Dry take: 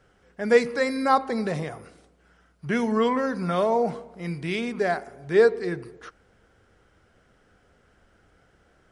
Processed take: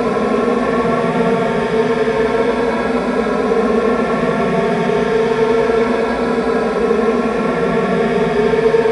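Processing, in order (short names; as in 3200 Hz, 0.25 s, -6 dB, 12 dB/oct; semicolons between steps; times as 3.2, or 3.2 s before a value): swelling echo 0.167 s, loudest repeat 8, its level -8 dB; harmonic-percussive split harmonic +7 dB; Paulstretch 20×, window 0.10 s, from 5.8; gain +1.5 dB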